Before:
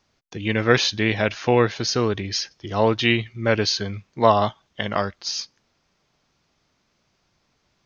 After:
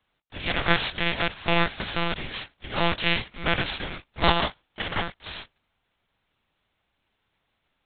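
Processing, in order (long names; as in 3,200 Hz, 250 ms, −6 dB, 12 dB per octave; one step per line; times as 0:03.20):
compressing power law on the bin magnitudes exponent 0.3
one-pitch LPC vocoder at 8 kHz 170 Hz
level −3.5 dB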